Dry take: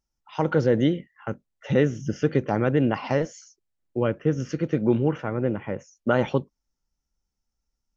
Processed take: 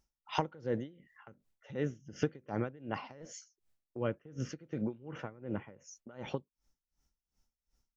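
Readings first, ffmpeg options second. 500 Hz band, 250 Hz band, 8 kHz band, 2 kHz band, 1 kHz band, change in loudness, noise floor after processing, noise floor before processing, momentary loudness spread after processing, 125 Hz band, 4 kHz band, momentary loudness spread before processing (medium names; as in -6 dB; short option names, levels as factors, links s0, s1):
-15.5 dB, -15.5 dB, no reading, -14.0 dB, -10.5 dB, -14.5 dB, under -85 dBFS, -82 dBFS, 15 LU, -15.5 dB, -8.5 dB, 13 LU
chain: -af "acompressor=threshold=0.02:ratio=6,aeval=exprs='val(0)*pow(10,-24*(0.5-0.5*cos(2*PI*2.7*n/s))/20)':c=same,volume=2"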